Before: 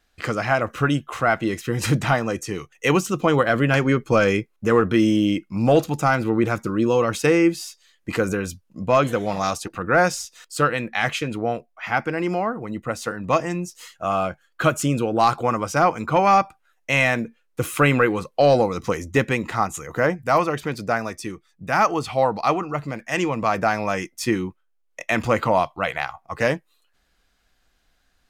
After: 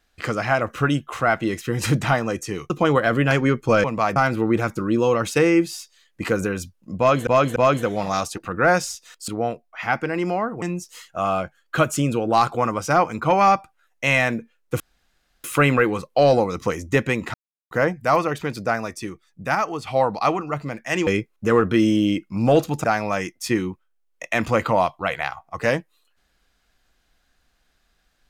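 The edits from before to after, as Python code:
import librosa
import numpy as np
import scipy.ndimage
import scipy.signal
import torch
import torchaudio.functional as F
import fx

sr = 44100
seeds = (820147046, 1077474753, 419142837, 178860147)

y = fx.edit(x, sr, fx.cut(start_s=2.7, length_s=0.43),
    fx.swap(start_s=4.27, length_s=1.77, other_s=23.29, other_length_s=0.32),
    fx.repeat(start_s=8.86, length_s=0.29, count=3),
    fx.cut(start_s=10.58, length_s=0.74),
    fx.cut(start_s=12.66, length_s=0.82),
    fx.insert_room_tone(at_s=17.66, length_s=0.64),
    fx.silence(start_s=19.56, length_s=0.37),
    fx.clip_gain(start_s=21.77, length_s=0.32, db=-5.0), tone=tone)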